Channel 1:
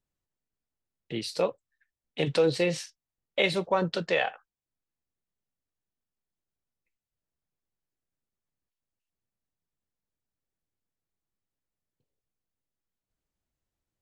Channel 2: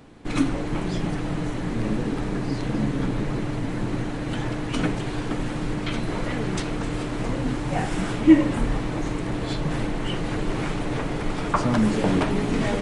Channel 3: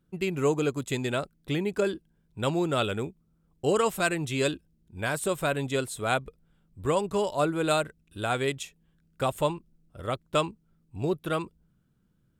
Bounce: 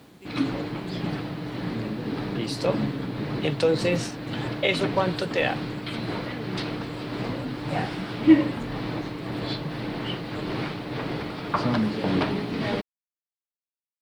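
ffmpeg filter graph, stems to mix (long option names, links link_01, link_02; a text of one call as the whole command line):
ffmpeg -i stem1.wav -i stem2.wav -i stem3.wav -filter_complex "[0:a]adelay=1250,volume=1.5dB[link_01];[1:a]highpass=85,highshelf=frequency=5600:width_type=q:width=3:gain=-7.5,tremolo=f=1.8:d=0.39,volume=-1.5dB[link_02];[2:a]volume=-20dB[link_03];[link_01][link_02][link_03]amix=inputs=3:normalize=0,acrusher=bits=9:mix=0:aa=0.000001" out.wav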